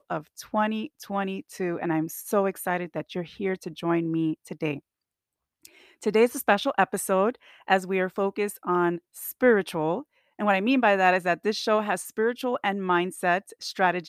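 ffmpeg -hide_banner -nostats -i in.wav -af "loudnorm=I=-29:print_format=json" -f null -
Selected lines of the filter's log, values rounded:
"input_i" : "-26.0",
"input_tp" : "-7.2",
"input_lra" : "4.5",
"input_thresh" : "-36.3",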